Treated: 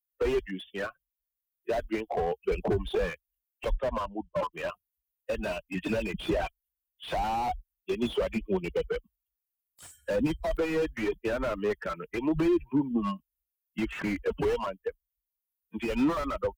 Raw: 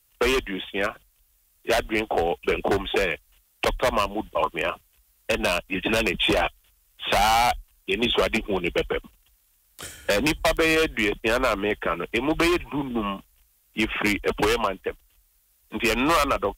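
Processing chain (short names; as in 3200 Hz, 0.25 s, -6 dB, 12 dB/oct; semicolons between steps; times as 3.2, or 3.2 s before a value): per-bin expansion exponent 2; 2.51–3.1 low shelf 220 Hz +8 dB; 3.74–4.53 LPF 2300 Hz; 12.33–12.96 bell 170 Hz -> 680 Hz +12.5 dB 1.3 oct; limiter -22.5 dBFS, peak gain reduction 12.5 dB; slew limiter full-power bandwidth 20 Hz; gain +4.5 dB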